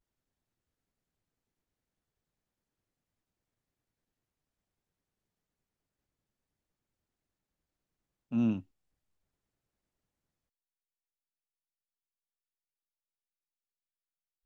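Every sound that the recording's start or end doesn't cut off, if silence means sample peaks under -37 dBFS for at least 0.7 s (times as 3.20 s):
8.32–8.59 s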